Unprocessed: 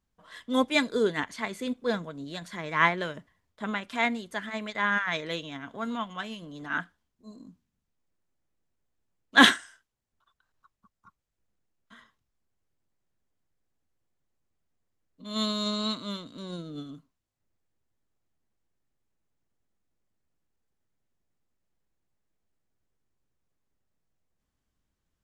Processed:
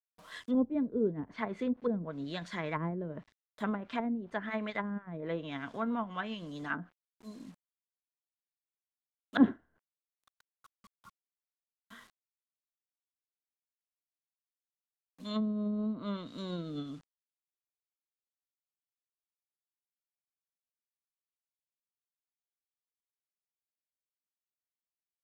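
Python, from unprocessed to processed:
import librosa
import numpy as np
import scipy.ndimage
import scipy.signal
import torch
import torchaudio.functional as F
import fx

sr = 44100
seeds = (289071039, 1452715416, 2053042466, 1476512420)

y = fx.quant_dither(x, sr, seeds[0], bits=10, dither='none')
y = fx.env_lowpass_down(y, sr, base_hz=330.0, full_db=-25.5)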